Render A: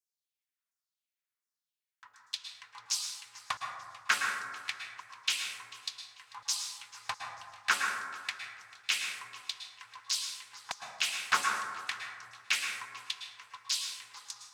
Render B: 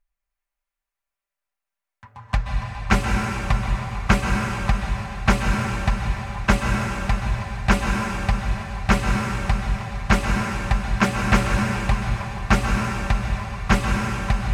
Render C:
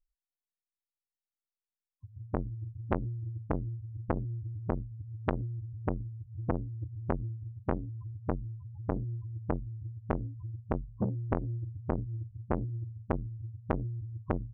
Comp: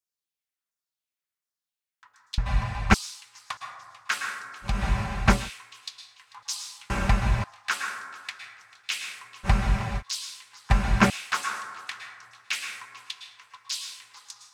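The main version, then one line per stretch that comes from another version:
A
2.38–2.94 from B
4.73–5.38 from B, crossfade 0.24 s
6.9–7.44 from B
9.46–10 from B, crossfade 0.06 s
10.7–11.1 from B
not used: C

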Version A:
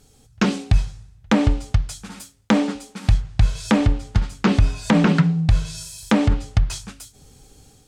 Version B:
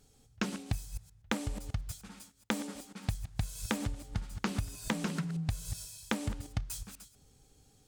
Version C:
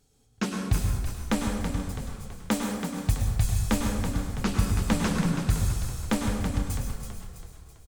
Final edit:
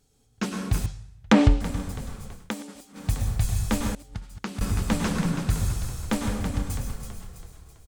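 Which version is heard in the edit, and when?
C
0.86–1.61 from A
2.43–3.02 from B, crossfade 0.24 s
3.95–4.61 from B

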